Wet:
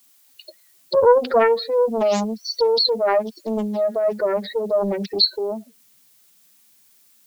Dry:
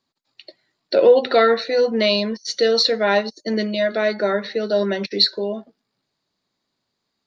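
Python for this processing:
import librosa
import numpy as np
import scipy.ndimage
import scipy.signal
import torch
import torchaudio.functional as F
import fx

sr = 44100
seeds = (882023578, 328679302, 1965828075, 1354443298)

y = fx.spec_expand(x, sr, power=2.7)
y = fx.dmg_noise_colour(y, sr, seeds[0], colour='blue', level_db=-56.0)
y = fx.doppler_dist(y, sr, depth_ms=0.58)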